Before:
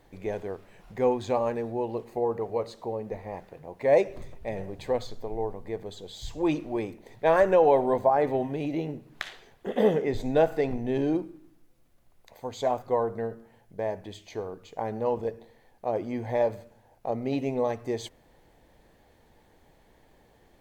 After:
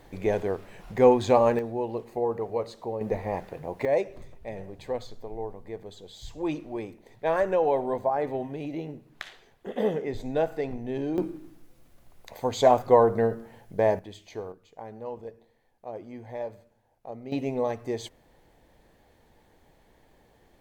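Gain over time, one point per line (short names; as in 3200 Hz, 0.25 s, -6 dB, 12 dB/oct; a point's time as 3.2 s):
+6.5 dB
from 1.59 s 0 dB
from 3.01 s +7 dB
from 3.85 s -4 dB
from 11.18 s +8 dB
from 13.99 s -2 dB
from 14.52 s -9.5 dB
from 17.32 s -0.5 dB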